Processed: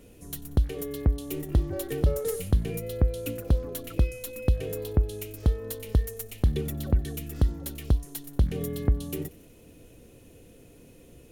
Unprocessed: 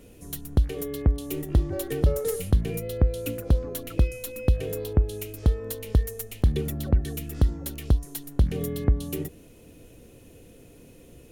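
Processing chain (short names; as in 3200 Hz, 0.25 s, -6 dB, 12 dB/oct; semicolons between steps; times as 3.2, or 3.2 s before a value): thin delay 92 ms, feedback 66%, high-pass 1700 Hz, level -21 dB; gain -2 dB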